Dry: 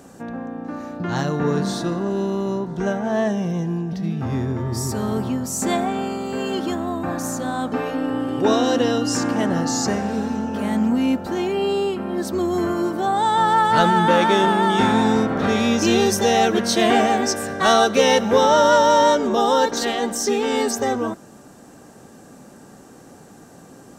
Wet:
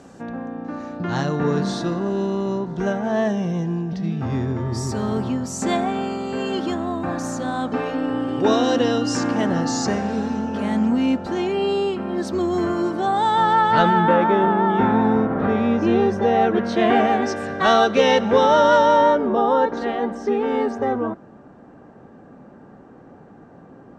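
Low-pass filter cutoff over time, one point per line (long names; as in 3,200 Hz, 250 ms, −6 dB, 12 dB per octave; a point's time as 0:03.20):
0:13.12 6,100 Hz
0:13.91 3,200 Hz
0:14.22 1,500 Hz
0:16.31 1,500 Hz
0:17.50 3,600 Hz
0:18.79 3,600 Hz
0:19.23 1,600 Hz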